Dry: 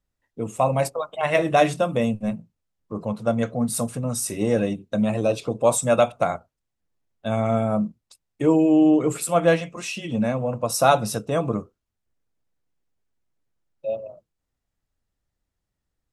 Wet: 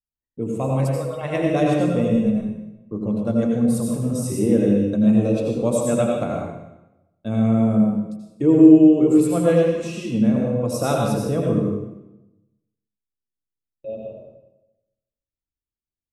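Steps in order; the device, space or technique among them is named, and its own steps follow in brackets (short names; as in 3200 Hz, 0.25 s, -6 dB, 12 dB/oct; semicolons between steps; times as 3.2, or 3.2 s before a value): gate with hold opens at -39 dBFS; bathroom (reverb RT60 0.95 s, pre-delay 77 ms, DRR -1 dB); resonant low shelf 520 Hz +9 dB, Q 1.5; gain -8 dB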